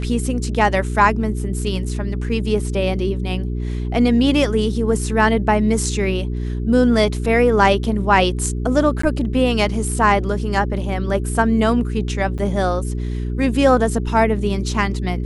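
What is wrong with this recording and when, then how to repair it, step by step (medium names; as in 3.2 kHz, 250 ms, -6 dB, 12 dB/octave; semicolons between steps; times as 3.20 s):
hum 60 Hz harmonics 7 -23 dBFS
9.02–9.03 s: dropout 14 ms
12.38–12.39 s: dropout 7.2 ms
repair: de-hum 60 Hz, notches 7; interpolate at 9.02 s, 14 ms; interpolate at 12.38 s, 7.2 ms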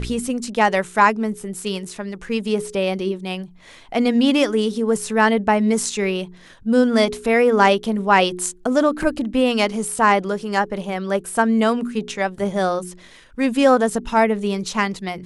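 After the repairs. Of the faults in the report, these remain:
nothing left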